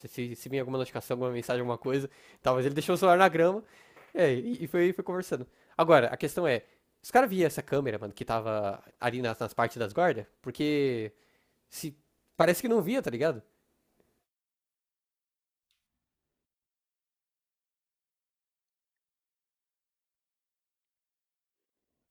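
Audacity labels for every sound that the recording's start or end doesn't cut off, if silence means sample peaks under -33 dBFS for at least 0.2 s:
2.460000	3.590000	sound
4.150000	5.430000	sound
5.790000	6.580000	sound
7.070000	8.760000	sound
9.020000	10.210000	sound
10.470000	11.070000	sound
11.760000	11.890000	sound
12.400000	13.380000	sound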